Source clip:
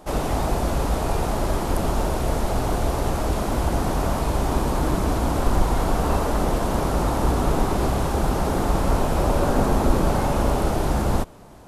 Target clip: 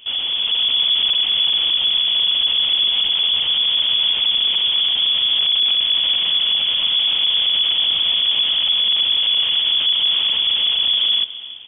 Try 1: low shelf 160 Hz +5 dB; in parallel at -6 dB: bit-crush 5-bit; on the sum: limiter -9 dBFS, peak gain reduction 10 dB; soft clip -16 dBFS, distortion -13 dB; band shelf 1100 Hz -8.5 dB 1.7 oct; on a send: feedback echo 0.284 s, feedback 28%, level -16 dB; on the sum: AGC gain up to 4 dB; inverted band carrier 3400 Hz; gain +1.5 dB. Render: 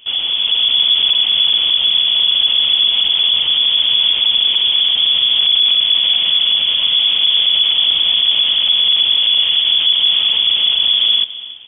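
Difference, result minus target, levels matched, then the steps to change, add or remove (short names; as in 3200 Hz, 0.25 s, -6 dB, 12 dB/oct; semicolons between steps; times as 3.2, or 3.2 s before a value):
soft clip: distortion -5 dB
change: soft clip -22 dBFS, distortion -9 dB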